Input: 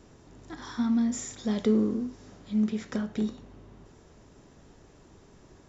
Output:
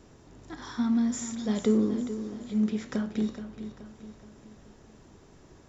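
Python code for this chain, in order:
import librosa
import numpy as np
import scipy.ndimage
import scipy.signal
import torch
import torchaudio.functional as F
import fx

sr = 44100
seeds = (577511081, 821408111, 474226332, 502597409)

y = fx.echo_feedback(x, sr, ms=425, feedback_pct=46, wet_db=-11.5)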